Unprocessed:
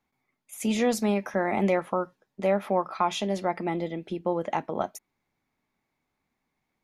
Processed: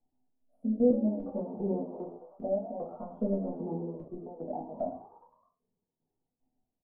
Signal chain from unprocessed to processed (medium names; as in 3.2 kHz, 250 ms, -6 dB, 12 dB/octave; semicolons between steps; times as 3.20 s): drifting ripple filter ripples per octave 0.75, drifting -0.47 Hz, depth 12 dB; 2.75–3.54 s: waveshaping leveller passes 1; compression 1.5:1, threshold -31 dBFS, peak gain reduction 6 dB; inverse Chebyshev low-pass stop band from 1.8 kHz, stop band 50 dB; tremolo saw down 2.5 Hz, depth 85%; frequency-shifting echo 104 ms, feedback 59%, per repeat +73 Hz, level -14 dB; simulated room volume 140 m³, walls furnished, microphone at 1.7 m; dynamic bell 260 Hz, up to +5 dB, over -44 dBFS, Q 3.8; 0.90–1.40 s: comb 3.5 ms, depth 87%; 4.08–4.64 s: three bands expanded up and down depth 70%; trim -5.5 dB